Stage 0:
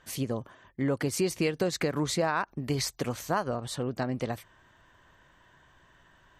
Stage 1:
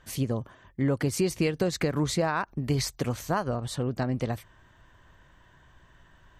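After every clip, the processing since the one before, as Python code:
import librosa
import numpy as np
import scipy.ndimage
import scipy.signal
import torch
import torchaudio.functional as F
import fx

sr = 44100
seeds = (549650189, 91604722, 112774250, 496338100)

y = fx.low_shelf(x, sr, hz=140.0, db=10.0)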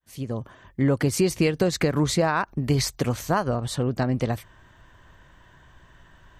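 y = fx.fade_in_head(x, sr, length_s=0.58)
y = y * librosa.db_to_amplitude(4.5)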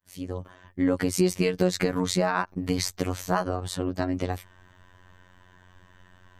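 y = fx.robotise(x, sr, hz=91.2)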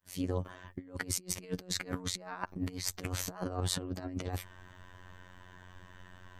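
y = fx.over_compress(x, sr, threshold_db=-32.0, ratio=-0.5)
y = y * librosa.db_to_amplitude(-4.5)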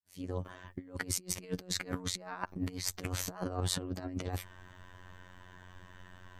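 y = fx.fade_in_head(x, sr, length_s=0.52)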